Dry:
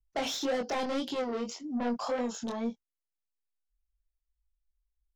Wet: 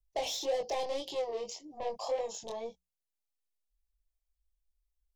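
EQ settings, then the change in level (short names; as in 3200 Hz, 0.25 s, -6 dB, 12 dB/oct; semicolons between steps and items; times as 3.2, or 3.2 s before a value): notches 60/120/180 Hz; fixed phaser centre 590 Hz, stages 4; 0.0 dB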